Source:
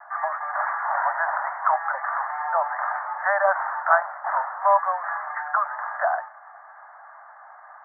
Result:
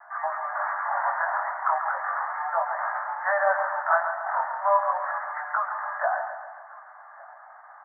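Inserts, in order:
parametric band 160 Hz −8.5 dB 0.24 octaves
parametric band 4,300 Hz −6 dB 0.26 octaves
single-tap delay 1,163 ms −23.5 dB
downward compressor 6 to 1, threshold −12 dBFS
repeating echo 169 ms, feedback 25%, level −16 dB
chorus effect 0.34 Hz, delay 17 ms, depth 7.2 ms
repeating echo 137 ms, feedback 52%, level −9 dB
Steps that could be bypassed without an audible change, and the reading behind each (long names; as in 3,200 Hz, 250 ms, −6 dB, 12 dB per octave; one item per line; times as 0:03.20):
parametric band 160 Hz: nothing at its input below 510 Hz
parametric band 4,300 Hz: nothing at its input above 2,000 Hz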